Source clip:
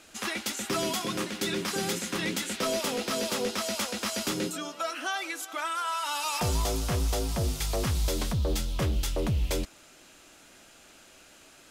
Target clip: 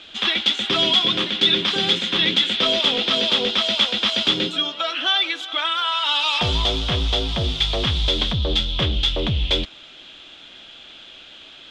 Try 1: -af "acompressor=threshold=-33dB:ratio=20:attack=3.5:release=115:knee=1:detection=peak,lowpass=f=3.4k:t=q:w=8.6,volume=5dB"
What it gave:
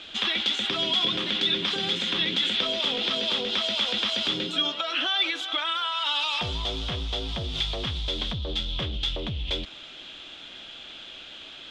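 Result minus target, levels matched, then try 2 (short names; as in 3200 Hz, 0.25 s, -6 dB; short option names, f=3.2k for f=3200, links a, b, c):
compressor: peak gain reduction +11 dB
-af "lowpass=f=3.4k:t=q:w=8.6,volume=5dB"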